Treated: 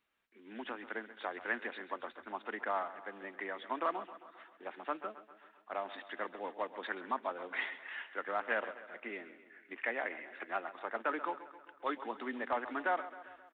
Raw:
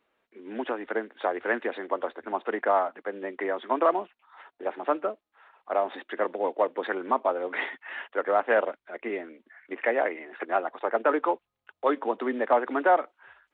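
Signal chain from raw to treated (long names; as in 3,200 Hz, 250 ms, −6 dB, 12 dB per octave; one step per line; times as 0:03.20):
parametric band 490 Hz −12.5 dB 2.2 octaves
on a send: repeating echo 133 ms, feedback 59%, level −14.5 dB
on the sum: level −3.5 dB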